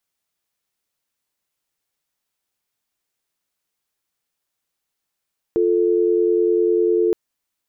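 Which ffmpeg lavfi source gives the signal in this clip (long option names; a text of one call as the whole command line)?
ffmpeg -f lavfi -i "aevalsrc='0.141*(sin(2*PI*350*t)+sin(2*PI*440*t))':duration=1.57:sample_rate=44100" out.wav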